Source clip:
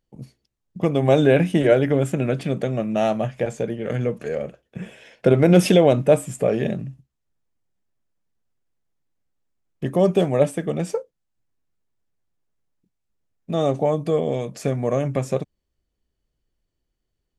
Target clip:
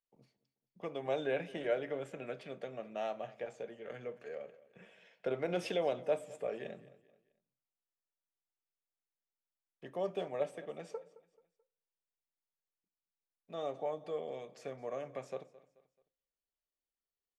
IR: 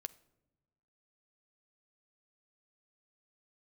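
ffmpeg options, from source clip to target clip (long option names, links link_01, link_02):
-filter_complex "[0:a]acrossover=split=390 5700:gain=0.158 1 0.224[link_01][link_02][link_03];[link_01][link_02][link_03]amix=inputs=3:normalize=0,aecho=1:1:217|434|651:0.106|0.0424|0.0169[link_04];[1:a]atrim=start_sample=2205,asetrate=83790,aresample=44100[link_05];[link_04][link_05]afir=irnorm=-1:irlink=0,volume=-6dB"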